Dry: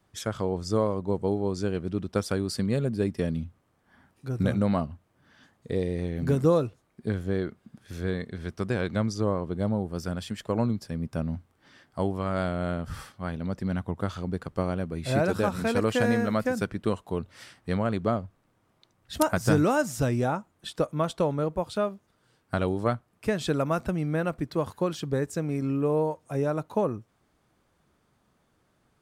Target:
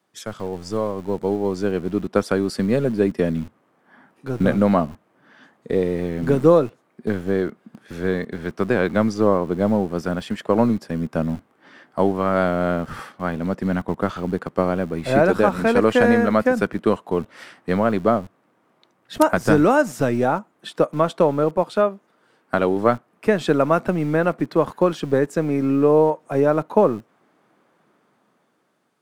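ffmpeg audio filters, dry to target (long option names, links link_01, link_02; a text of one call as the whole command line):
ffmpeg -i in.wav -filter_complex "[0:a]asettb=1/sr,asplit=3[link_01][link_02][link_03];[link_01]atrim=end=21.664[link_04];[link_02]atrim=start=21.66:end=22.76,asetpts=PTS-STARTPTS,afade=type=in:duration=0.004:curve=qsin,afade=type=out:start_time=1.096:duration=0.004:curve=qsin,lowshelf=frequency=100:gain=-9.5[link_05];[link_03]atrim=start=22.756[link_06];[link_04][link_05]acrossfade=duration=0.004:curve1=hsin:curve2=qsin[link_07];[link_07][link_06]acrossfade=duration=0.004:curve1=qsin:curve2=hsin,acrossover=split=170|2600[link_08][link_09][link_10];[link_08]acrusher=bits=4:dc=4:mix=0:aa=0.000001[link_11];[link_09]dynaudnorm=framelen=380:gausssize=7:maxgain=11dB[link_12];[link_11][link_12][link_10]amix=inputs=3:normalize=0" out.wav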